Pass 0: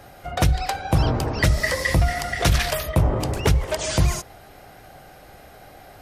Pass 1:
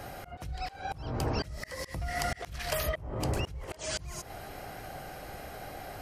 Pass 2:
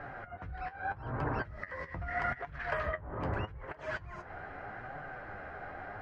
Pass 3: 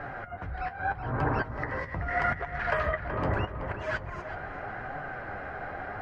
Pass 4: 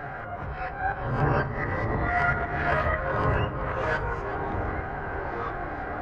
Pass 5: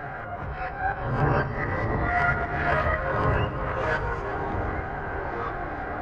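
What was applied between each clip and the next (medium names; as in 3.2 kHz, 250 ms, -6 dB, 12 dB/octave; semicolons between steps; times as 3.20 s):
band-stop 3.6 kHz, Q 16; compression 10:1, threshold -28 dBFS, peak gain reduction 16 dB; slow attack 317 ms; trim +2.5 dB
dynamic bell 990 Hz, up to +5 dB, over -57 dBFS, Q 7.3; resonant low-pass 1.6 kHz, resonance Q 2.9; flange 0.8 Hz, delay 6.6 ms, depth 6.1 ms, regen +47%
filtered feedback delay 376 ms, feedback 37%, low-pass 3.1 kHz, level -9 dB; trim +6 dB
reverse spectral sustain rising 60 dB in 0.41 s; reverberation RT60 0.70 s, pre-delay 3 ms, DRR 7 dB; ever faster or slower copies 200 ms, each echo -5 st, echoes 3, each echo -6 dB
feedback echo behind a high-pass 115 ms, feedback 82%, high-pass 3.1 kHz, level -13 dB; trim +1 dB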